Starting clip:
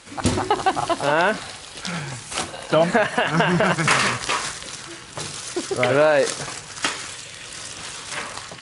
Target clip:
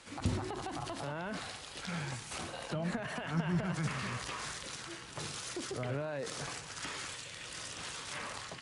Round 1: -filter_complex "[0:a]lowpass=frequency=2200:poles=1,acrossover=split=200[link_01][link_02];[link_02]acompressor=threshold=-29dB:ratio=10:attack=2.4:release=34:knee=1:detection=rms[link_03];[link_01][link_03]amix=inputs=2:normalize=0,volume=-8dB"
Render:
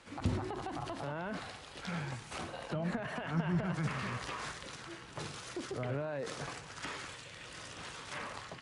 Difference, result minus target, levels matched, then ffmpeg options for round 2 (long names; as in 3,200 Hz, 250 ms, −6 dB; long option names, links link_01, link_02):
8,000 Hz band −6.0 dB
-filter_complex "[0:a]lowpass=frequency=7700:poles=1,acrossover=split=200[link_01][link_02];[link_02]acompressor=threshold=-29dB:ratio=10:attack=2.4:release=34:knee=1:detection=rms[link_03];[link_01][link_03]amix=inputs=2:normalize=0,volume=-8dB"